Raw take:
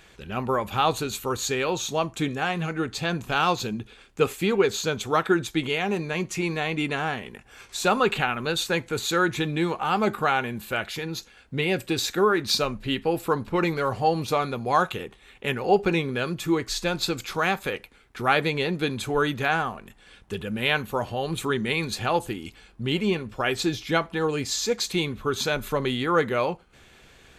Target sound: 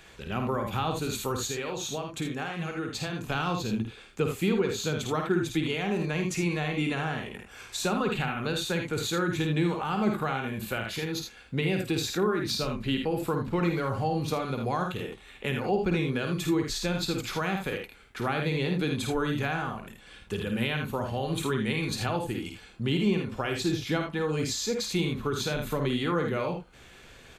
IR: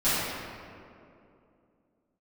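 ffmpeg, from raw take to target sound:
-filter_complex "[0:a]asettb=1/sr,asplit=3[link_01][link_02][link_03];[link_01]atrim=end=1.464[link_04];[link_02]atrim=start=1.46:end=3.3,asetpts=PTS-STARTPTS,afade=type=in:duration=0.004:curve=qsin,afade=type=out:start_time=1.836:duration=0.004:curve=qsin,acompressor=threshold=-30dB:ratio=6[link_05];[link_03]atrim=start=3.296[link_06];[link_04][link_05]acrossfade=duration=0.004:curve1=hsin:curve2=qsin[link_07];[link_07][link_06]acrossfade=duration=0.004:curve1=qsin:curve2=hsin,aecho=1:1:52|79:0.501|0.398,acrossover=split=280[link_08][link_09];[link_09]acompressor=threshold=-31dB:ratio=3[link_10];[link_08][link_10]amix=inputs=2:normalize=0"

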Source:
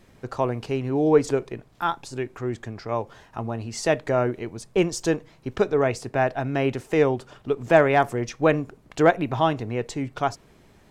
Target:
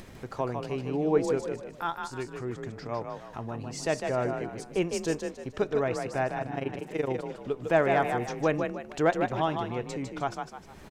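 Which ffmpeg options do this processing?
ffmpeg -i in.wav -filter_complex "[0:a]acompressor=mode=upward:threshold=-28dB:ratio=2.5,asplit=3[link_01][link_02][link_03];[link_01]afade=type=out:start_time=6.38:duration=0.02[link_04];[link_02]tremolo=f=24:d=0.889,afade=type=in:start_time=6.38:duration=0.02,afade=type=out:start_time=7.08:duration=0.02[link_05];[link_03]afade=type=in:start_time=7.08:duration=0.02[link_06];[link_04][link_05][link_06]amix=inputs=3:normalize=0,asplit=5[link_07][link_08][link_09][link_10][link_11];[link_08]adelay=153,afreqshift=35,volume=-5.5dB[link_12];[link_09]adelay=306,afreqshift=70,volume=-14.1dB[link_13];[link_10]adelay=459,afreqshift=105,volume=-22.8dB[link_14];[link_11]adelay=612,afreqshift=140,volume=-31.4dB[link_15];[link_07][link_12][link_13][link_14][link_15]amix=inputs=5:normalize=0,volume=-7dB" out.wav

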